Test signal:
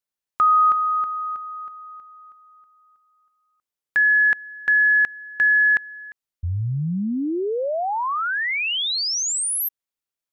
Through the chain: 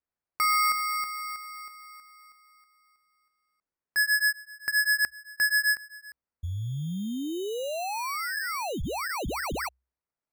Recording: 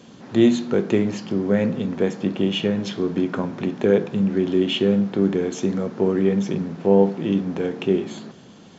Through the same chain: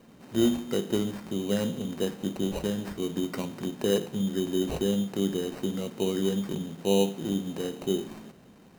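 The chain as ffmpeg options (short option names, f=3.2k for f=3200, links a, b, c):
-af "acrusher=samples=13:mix=1:aa=0.000001,equalizer=f=64:w=7.5:g=8,volume=-8dB"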